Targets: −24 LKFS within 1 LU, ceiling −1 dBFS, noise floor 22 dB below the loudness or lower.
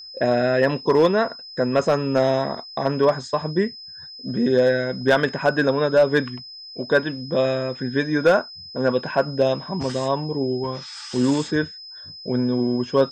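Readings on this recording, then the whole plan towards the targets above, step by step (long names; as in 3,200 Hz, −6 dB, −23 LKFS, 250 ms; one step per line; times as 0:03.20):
share of clipped samples 0.6%; peaks flattened at −9.0 dBFS; interfering tone 5,100 Hz; level of the tone −37 dBFS; integrated loudness −21.5 LKFS; sample peak −9.0 dBFS; target loudness −24.0 LKFS
→ clipped peaks rebuilt −9 dBFS
notch filter 5,100 Hz, Q 30
level −2.5 dB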